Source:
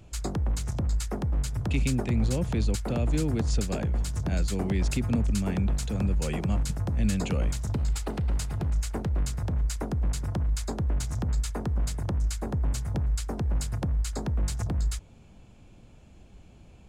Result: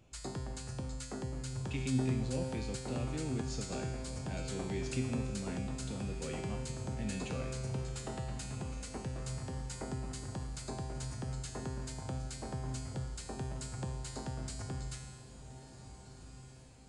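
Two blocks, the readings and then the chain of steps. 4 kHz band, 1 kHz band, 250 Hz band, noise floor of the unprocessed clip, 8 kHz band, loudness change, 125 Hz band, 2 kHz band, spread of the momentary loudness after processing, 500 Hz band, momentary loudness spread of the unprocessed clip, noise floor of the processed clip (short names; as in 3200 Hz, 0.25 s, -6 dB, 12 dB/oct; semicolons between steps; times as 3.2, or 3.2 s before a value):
-6.5 dB, -6.0 dB, -8.5 dB, -52 dBFS, -7.0 dB, -10.5 dB, -10.5 dB, -6.5 dB, 8 LU, -6.0 dB, 4 LU, -53 dBFS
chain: low shelf 78 Hz -10 dB; resonator 130 Hz, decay 1.3 s, harmonics all, mix 90%; on a send: diffused feedback echo 1.467 s, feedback 47%, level -12 dB; on the sum: downsampling 22050 Hz; gain +8 dB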